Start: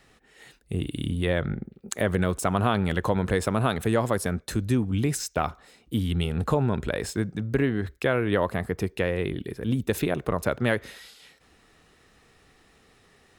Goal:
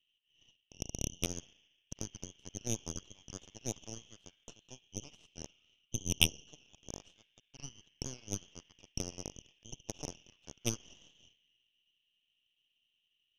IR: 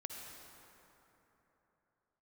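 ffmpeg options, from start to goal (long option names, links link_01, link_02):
-filter_complex "[0:a]asuperpass=centerf=3000:order=4:qfactor=6.7,asplit=2[link_01][link_02];[1:a]atrim=start_sample=2205,asetrate=79380,aresample=44100[link_03];[link_02][link_03]afir=irnorm=-1:irlink=0,volume=4dB[link_04];[link_01][link_04]amix=inputs=2:normalize=0,aeval=exprs='0.112*(cos(1*acos(clip(val(0)/0.112,-1,1)))-cos(1*PI/2))+0.0398*(cos(3*acos(clip(val(0)/0.112,-1,1)))-cos(3*PI/2))+0.0126*(cos(6*acos(clip(val(0)/0.112,-1,1)))-cos(6*PI/2))':channel_layout=same,volume=14dB"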